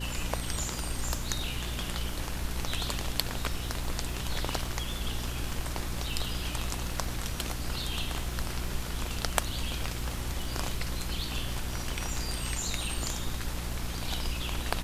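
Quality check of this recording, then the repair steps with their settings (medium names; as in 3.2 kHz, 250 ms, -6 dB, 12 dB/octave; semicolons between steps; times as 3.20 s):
crackle 29 per s -38 dBFS
hum 60 Hz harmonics 6 -37 dBFS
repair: de-click; de-hum 60 Hz, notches 6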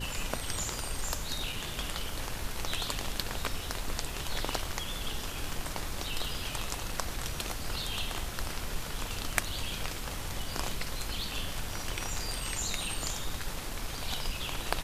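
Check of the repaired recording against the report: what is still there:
nothing left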